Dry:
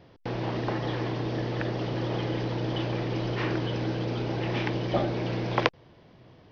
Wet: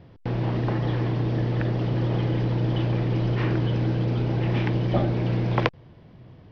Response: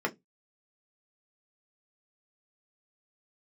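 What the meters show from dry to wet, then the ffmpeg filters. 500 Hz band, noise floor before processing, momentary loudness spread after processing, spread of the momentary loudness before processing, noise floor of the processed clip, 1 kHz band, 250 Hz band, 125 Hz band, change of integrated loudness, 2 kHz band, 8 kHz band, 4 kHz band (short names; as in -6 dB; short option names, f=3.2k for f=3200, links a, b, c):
+1.0 dB, -55 dBFS, 2 LU, 3 LU, -50 dBFS, 0.0 dB, +4.0 dB, +8.5 dB, +5.0 dB, -0.5 dB, n/a, -2.0 dB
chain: -af "bass=f=250:g=9,treble=f=4k:g=-6"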